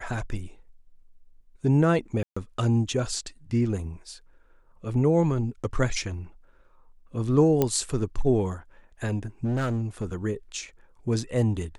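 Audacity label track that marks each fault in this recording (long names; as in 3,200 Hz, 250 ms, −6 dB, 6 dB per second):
2.230000	2.370000	drop-out 135 ms
7.620000	7.620000	click −9 dBFS
9.440000	10.150000	clipping −23 dBFS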